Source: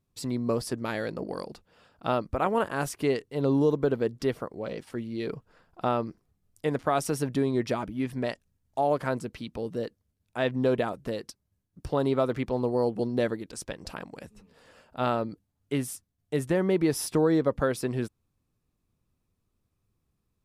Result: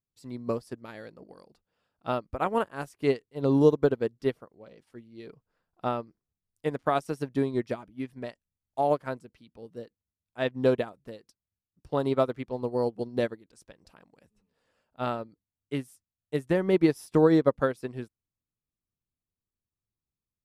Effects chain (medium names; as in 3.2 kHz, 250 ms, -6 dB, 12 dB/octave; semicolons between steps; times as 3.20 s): upward expansion 2.5:1, over -35 dBFS; trim +5.5 dB